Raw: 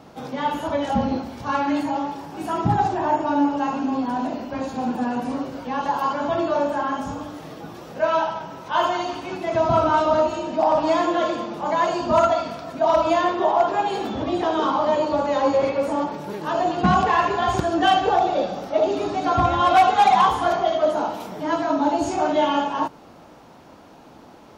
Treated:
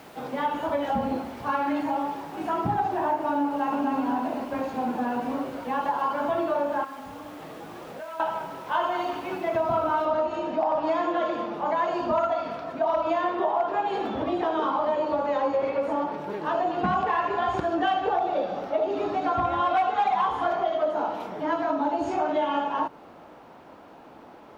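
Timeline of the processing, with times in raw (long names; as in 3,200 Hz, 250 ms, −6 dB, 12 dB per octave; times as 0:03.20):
0:03.47–0:03.93: delay throw 250 ms, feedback 35%, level −2 dB
0:06.84–0:08.20: downward compressor 12 to 1, threshold −34 dBFS
0:10.05: noise floor change −45 dB −63 dB
whole clip: bass and treble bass −7 dB, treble −15 dB; downward compressor 3 to 1, threshold −23 dBFS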